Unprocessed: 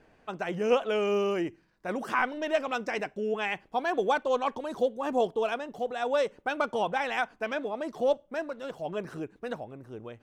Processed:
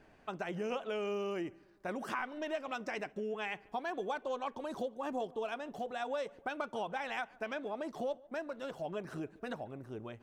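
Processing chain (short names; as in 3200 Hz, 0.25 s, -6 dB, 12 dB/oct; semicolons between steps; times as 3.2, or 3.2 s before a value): notch 480 Hz, Q 12; compressor 3:1, threshold -36 dBFS, peak gain reduction 12 dB; on a send: tape echo 0.145 s, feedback 56%, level -22.5 dB, low-pass 2000 Hz; on the sum: gain -1 dB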